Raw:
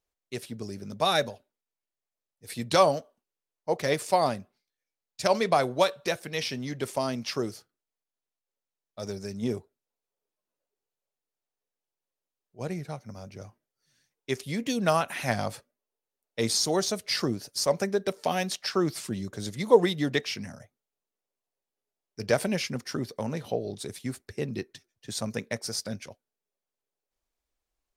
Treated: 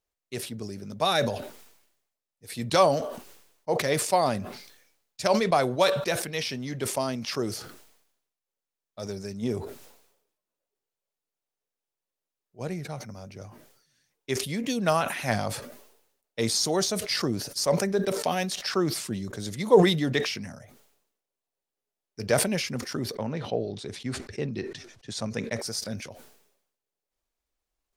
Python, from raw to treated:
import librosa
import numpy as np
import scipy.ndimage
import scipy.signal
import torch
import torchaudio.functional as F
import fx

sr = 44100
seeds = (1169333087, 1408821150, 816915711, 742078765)

y = fx.lowpass(x, sr, hz=fx.line((23.14, 3800.0), (25.58, 8100.0)), slope=12, at=(23.14, 25.58), fade=0.02)
y = fx.sustainer(y, sr, db_per_s=68.0)